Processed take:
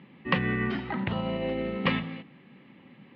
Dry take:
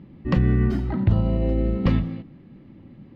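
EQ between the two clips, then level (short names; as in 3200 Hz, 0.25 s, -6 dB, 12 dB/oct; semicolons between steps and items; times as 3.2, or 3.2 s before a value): air absorption 70 m; speaker cabinet 100–3100 Hz, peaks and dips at 100 Hz -8 dB, 320 Hz -7 dB, 630 Hz -5 dB, 1400 Hz -4 dB; tilt +4.5 dB/oct; +5.0 dB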